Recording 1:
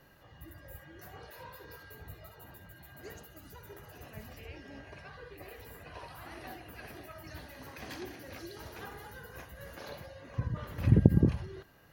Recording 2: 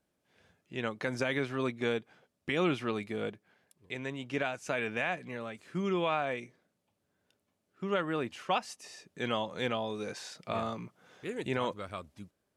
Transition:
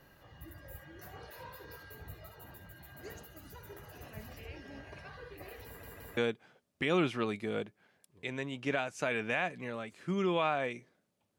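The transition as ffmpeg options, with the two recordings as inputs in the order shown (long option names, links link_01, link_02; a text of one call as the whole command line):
ffmpeg -i cue0.wav -i cue1.wav -filter_complex "[0:a]apad=whole_dur=11.38,atrim=end=11.38,asplit=3[link_01][link_02][link_03];[link_01]atrim=end=5.832[link_04];[link_02]atrim=start=5.658:end=5.832[link_05];[link_03]atrim=start=5.658:end=5.832[link_06];[1:a]atrim=start=1.838:end=7.05[link_07];[link_04][link_05]acrossfade=duration=0.004:curve1=hsin:curve2=hsin[link_08];[link_08][link_06]acrossfade=duration=0.004:curve1=hsin:curve2=hsin[link_09];[link_09][link_07]acrossfade=duration=0.004:curve1=hsin:curve2=hsin" out.wav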